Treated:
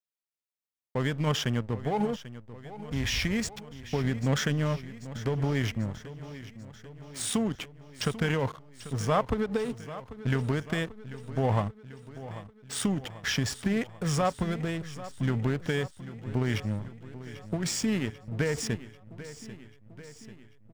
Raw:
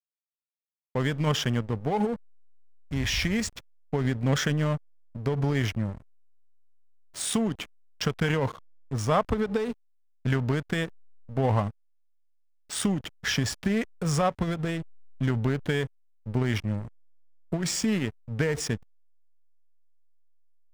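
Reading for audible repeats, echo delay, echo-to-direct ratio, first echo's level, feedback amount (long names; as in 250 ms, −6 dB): 5, 791 ms, −13.0 dB, −15.0 dB, 60%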